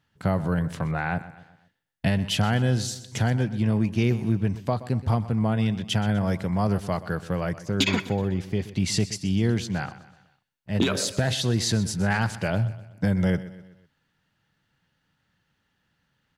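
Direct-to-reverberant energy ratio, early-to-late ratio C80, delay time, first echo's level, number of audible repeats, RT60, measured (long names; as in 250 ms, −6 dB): no reverb audible, no reverb audible, 125 ms, −16.0 dB, 3, no reverb audible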